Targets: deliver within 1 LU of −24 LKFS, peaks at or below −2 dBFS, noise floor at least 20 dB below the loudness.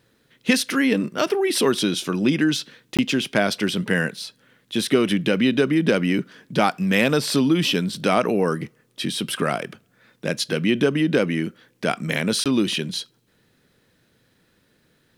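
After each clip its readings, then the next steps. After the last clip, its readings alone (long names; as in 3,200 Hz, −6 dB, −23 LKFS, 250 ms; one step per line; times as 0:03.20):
number of dropouts 2; longest dropout 17 ms; integrated loudness −22.0 LKFS; sample peak −4.5 dBFS; target loudness −24.0 LKFS
→ repair the gap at 0:02.97/0:12.44, 17 ms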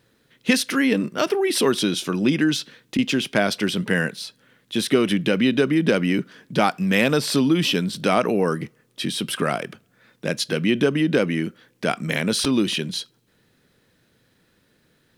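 number of dropouts 0; integrated loudness −22.0 LKFS; sample peak −4.5 dBFS; target loudness −24.0 LKFS
→ level −2 dB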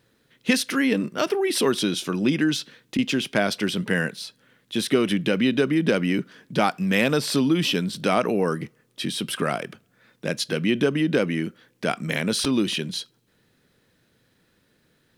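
integrated loudness −24.0 LKFS; sample peak −6.5 dBFS; background noise floor −66 dBFS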